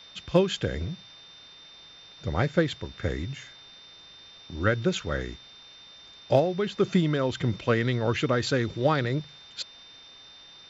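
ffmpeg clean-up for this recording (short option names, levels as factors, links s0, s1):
-af "bandreject=f=3600:w=30,afftdn=nr=22:nf=-50"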